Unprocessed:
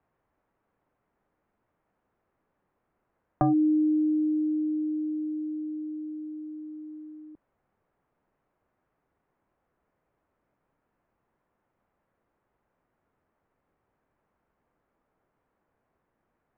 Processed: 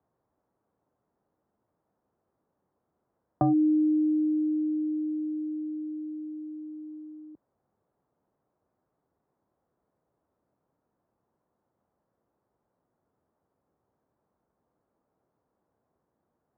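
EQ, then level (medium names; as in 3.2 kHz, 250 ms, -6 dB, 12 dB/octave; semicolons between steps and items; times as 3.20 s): high-pass 71 Hz; low-pass 1 kHz 12 dB/octave; 0.0 dB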